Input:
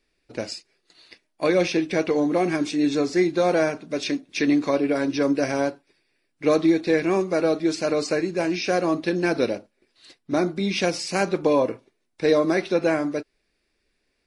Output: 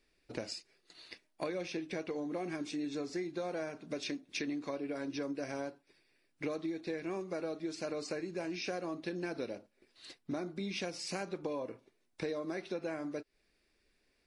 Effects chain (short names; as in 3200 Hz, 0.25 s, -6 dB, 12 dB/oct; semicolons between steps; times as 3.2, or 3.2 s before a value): compressor 6:1, threshold -34 dBFS, peak gain reduction 18.5 dB; gain -2.5 dB